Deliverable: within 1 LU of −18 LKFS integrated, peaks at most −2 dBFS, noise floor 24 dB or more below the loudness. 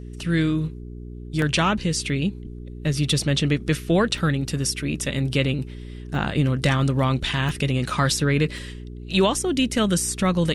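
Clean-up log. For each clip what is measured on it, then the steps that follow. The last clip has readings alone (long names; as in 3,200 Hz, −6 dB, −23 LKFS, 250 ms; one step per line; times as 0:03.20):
number of dropouts 5; longest dropout 1.4 ms; mains hum 60 Hz; hum harmonics up to 420 Hz; level of the hum −33 dBFS; integrated loudness −23.0 LKFS; sample peak −8.0 dBFS; target loudness −18.0 LKFS
→ repair the gap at 0:01.42/0:04.18/0:06.15/0:07.49/0:08.58, 1.4 ms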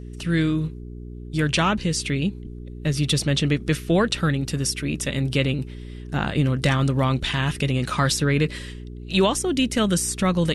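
number of dropouts 0; mains hum 60 Hz; hum harmonics up to 420 Hz; level of the hum −33 dBFS
→ hum removal 60 Hz, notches 7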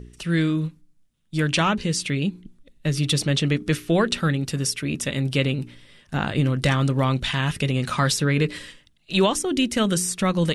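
mains hum none found; integrated loudness −23.0 LKFS; sample peak −8.0 dBFS; target loudness −18.0 LKFS
→ level +5 dB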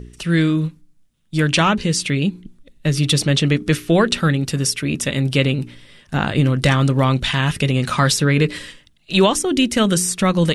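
integrated loudness −18.0 LKFS; sample peak −3.0 dBFS; background noise floor −55 dBFS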